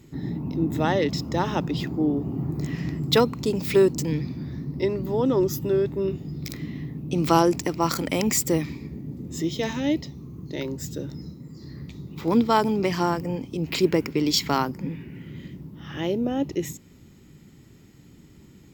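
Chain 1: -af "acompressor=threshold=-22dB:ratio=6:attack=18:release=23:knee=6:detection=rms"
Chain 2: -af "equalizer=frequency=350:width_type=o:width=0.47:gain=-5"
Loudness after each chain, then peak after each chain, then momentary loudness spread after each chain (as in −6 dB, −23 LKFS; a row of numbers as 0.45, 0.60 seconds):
−27.5, −26.5 LKFS; −9.0, −4.0 dBFS; 14, 17 LU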